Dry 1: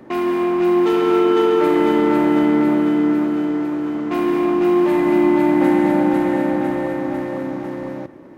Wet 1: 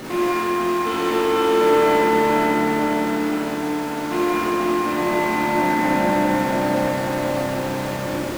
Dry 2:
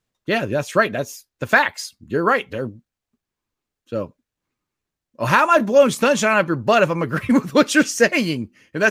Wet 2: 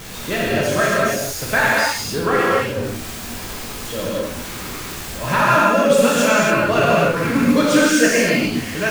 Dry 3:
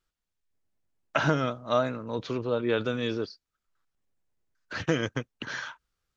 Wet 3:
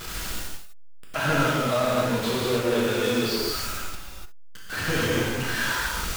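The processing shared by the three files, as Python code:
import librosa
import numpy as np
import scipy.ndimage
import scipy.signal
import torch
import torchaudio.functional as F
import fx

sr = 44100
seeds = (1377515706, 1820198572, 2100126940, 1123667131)

y = x + 0.5 * 10.0 ** (-23.0 / 20.0) * np.sign(x)
y = fx.rev_gated(y, sr, seeds[0], gate_ms=320, shape='flat', drr_db=-7.5)
y = y * librosa.db_to_amplitude(-7.5)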